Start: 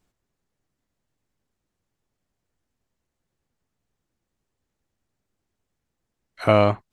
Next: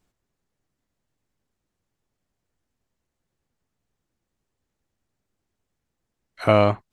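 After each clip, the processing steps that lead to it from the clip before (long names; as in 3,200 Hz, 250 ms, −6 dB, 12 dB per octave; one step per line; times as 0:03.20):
no processing that can be heard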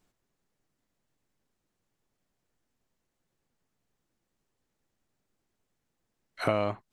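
parametric band 67 Hz −8.5 dB 1.1 octaves
downward compressor 4 to 1, threshold −25 dBFS, peak gain reduction 11.5 dB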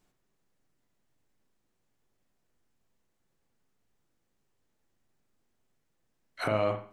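brickwall limiter −16 dBFS, peak gain reduction 6 dB
convolution reverb, pre-delay 37 ms, DRR 6 dB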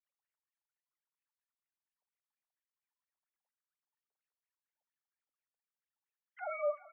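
three sine waves on the formant tracks
LFO wah 4.3 Hz 680–2,500 Hz, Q 2.4
single-tap delay 385 ms −17.5 dB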